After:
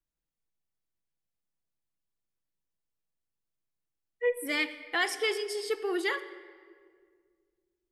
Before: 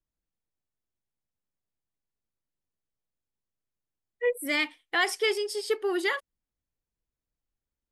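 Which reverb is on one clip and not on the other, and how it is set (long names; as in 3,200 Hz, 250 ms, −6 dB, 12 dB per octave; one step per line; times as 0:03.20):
rectangular room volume 3,100 cubic metres, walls mixed, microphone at 0.69 metres
level −3 dB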